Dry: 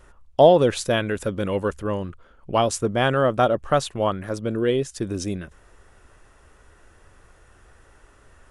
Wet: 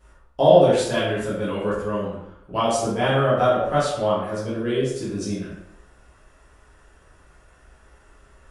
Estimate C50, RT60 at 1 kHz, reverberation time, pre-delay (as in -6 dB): 1.0 dB, 0.85 s, 0.80 s, 8 ms